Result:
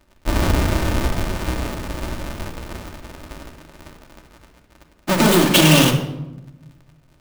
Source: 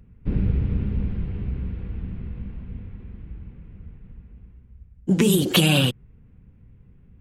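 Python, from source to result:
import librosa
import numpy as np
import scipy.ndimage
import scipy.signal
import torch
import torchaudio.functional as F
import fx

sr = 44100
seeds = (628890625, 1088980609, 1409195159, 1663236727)

y = fx.halfwave_hold(x, sr)
y = fx.low_shelf(y, sr, hz=300.0, db=-9.5)
y = fx.leveller(y, sr, passes=2)
y = fx.room_shoebox(y, sr, seeds[0], volume_m3=3800.0, walls='furnished', distance_m=2.6)
y = F.gain(torch.from_numpy(y), -4.0).numpy()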